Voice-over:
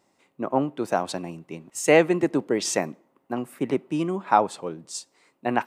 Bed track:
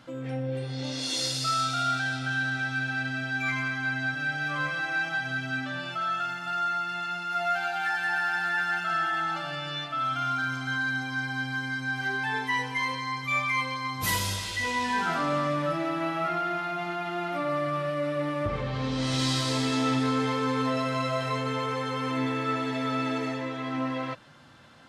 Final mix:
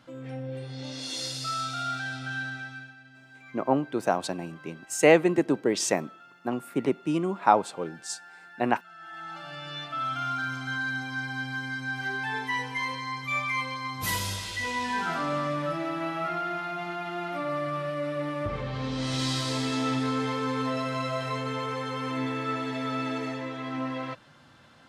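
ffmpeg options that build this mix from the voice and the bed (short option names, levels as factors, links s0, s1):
-filter_complex "[0:a]adelay=3150,volume=0.891[s0];[1:a]volume=5.62,afade=t=out:st=2.38:d=0.58:silence=0.141254,afade=t=in:st=8.97:d=0.99:silence=0.105925[s1];[s0][s1]amix=inputs=2:normalize=0"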